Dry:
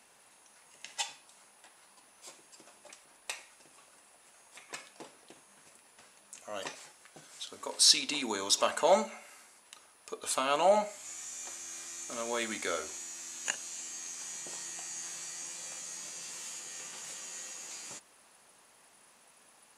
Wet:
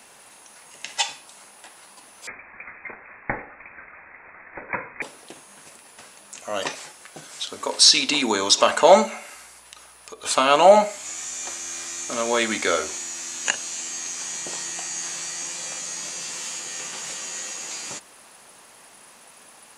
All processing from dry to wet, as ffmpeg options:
ffmpeg -i in.wav -filter_complex "[0:a]asettb=1/sr,asplit=3[link_01][link_02][link_03];[link_01]atrim=end=2.274[link_04];[link_02]atrim=start=2.27:end=5.02,asetpts=PTS-STARTPTS,afade=type=in:duration=0.004:curve=qsin,afade=type=out:start_time=2.746:duration=0.004:curve=qsin,acontrast=64,lowpass=frequency=2300:width_type=q:width=0.5098,lowpass=frequency=2300:width_type=q:width=0.6013,lowpass=frequency=2300:width_type=q:width=0.9,lowpass=frequency=2300:width_type=q:width=2.563,afreqshift=-2700[link_05];[link_03]atrim=start=5.016[link_06];[link_04][link_05]acrossfade=duration=0.004:curve1=hsin:curve2=qsin[link_07];[link_07][link_06]acrossfade=duration=0.004:curve1=qsin:curve2=hsin,asettb=1/sr,asplit=3[link_08][link_09][link_10];[link_08]atrim=end=9.344[link_11];[link_09]atrim=start=9.34:end=10.25,asetpts=PTS-STARTPTS,afade=type=in:duration=0.004:curve=qsin,afade=type=out:start_time=0.906:duration=0.004:curve=qsin,equalizer=frequency=130:width_type=o:width=2.9:gain=-7.5,acompressor=threshold=-51dB:ratio=2.5:attack=3.2:release=140:knee=1:detection=peak,aeval=exprs='val(0)+0.000112*(sin(2*PI*60*n/s)+sin(2*PI*2*60*n/s)/2+sin(2*PI*3*60*n/s)/3+sin(2*PI*4*60*n/s)/4+sin(2*PI*5*60*n/s)/5)':channel_layout=same[link_12];[link_10]atrim=start=10.246[link_13];[link_11][link_12]acrossfade=duration=0.004:curve1=hsin:curve2=qsin[link_14];[link_14][link_13]acrossfade=duration=0.004:curve1=qsin:curve2=hsin,acrossover=split=8300[link_15][link_16];[link_16]acompressor=threshold=-59dB:ratio=4:attack=1:release=60[link_17];[link_15][link_17]amix=inputs=2:normalize=0,alimiter=level_in=13.5dB:limit=-1dB:release=50:level=0:latency=1,volume=-1dB" out.wav

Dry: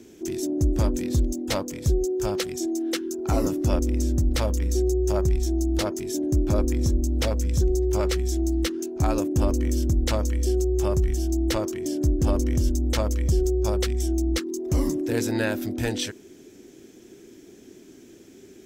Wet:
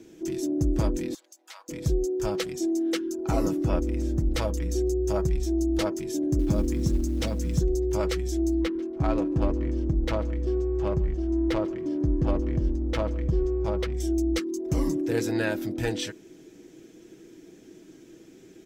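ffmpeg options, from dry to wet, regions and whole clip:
ffmpeg -i in.wav -filter_complex "[0:a]asettb=1/sr,asplit=3[link_01][link_02][link_03];[link_01]atrim=end=1.144[link_04];[link_02]atrim=start=1.14:end=1.69,asetpts=PTS-STARTPTS,afade=type=in:duration=0.004:curve=qsin,afade=type=out:start_time=0.546:duration=0.004:curve=qsin,highpass=frequency=940:width=0.5412,highpass=frequency=940:width=1.3066,acompressor=threshold=-42dB:ratio=3:attack=3.2:release=140:knee=1:detection=peak[link_05];[link_03]atrim=start=1.686[link_06];[link_04][link_05]acrossfade=duration=0.004:curve1=hsin:curve2=qsin[link_07];[link_07][link_06]acrossfade=duration=0.004:curve1=qsin:curve2=hsin,asettb=1/sr,asplit=3[link_08][link_09][link_10];[link_08]atrim=end=3.544[link_11];[link_09]atrim=start=3.54:end=4.31,asetpts=PTS-STARTPTS,afade=type=in:duration=0.004:curve=qsin,afade=type=out:start_time=0.766:duration=0.004:curve=qsin,acrossover=split=2500[link_12][link_13];[link_13]acompressor=threshold=-52dB:ratio=4:attack=1:release=60[link_14];[link_12][link_14]amix=inputs=2:normalize=0,highshelf=frequency=2500:gain=7.5[link_15];[link_10]atrim=start=4.306[link_16];[link_11][link_15]acrossfade=duration=0.004:curve1=hsin:curve2=qsin[link_17];[link_17][link_16]acrossfade=duration=0.004:curve1=qsin:curve2=hsin,asettb=1/sr,asplit=3[link_18][link_19][link_20];[link_18]atrim=end=6.394[link_21];[link_19]atrim=start=6.39:end=7.59,asetpts=PTS-STARTPTS,afade=type=in:duration=0.004:curve=qsin,afade=type=out:start_time=1.196:duration=0.004:curve=qsin,equalizer=frequency=220:width_type=o:width=0.69:gain=7,acrossover=split=280|3000[link_22][link_23][link_24];[link_23]acompressor=threshold=-32dB:ratio=2:attack=3.2:release=140:knee=2.83:detection=peak[link_25];[link_22][link_25][link_24]amix=inputs=3:normalize=0,acrusher=bits=8:mode=log:mix=0:aa=0.000001[link_26];[link_20]atrim=start=7.586[link_27];[link_21][link_26]acrossfade=duration=0.004:curve1=hsin:curve2=qsin[link_28];[link_28][link_27]acrossfade=duration=0.004:curve1=qsin:curve2=hsin,asettb=1/sr,asplit=3[link_29][link_30][link_31];[link_29]atrim=end=8.614[link_32];[link_30]atrim=start=8.61:end=13.94,asetpts=PTS-STARTPTS,afade=type=in:duration=0.004:curve=qsin,afade=type=out:start_time=5.326:duration=0.004:curve=qsin,adynamicsmooth=sensitivity=2.5:basefreq=1300,aecho=1:1:142|284:0.0794|0.0207,atrim=end_sample=235053[link_33];[link_31]atrim=start=13.936[link_34];[link_32][link_33]acrossfade=duration=0.004:curve1=hsin:curve2=qsin[link_35];[link_35][link_34]acrossfade=duration=0.004:curve1=qsin:curve2=hsin,highshelf=frequency=5800:gain=-6.5,aecho=1:1:6.2:0.48,volume=-2dB" out.wav

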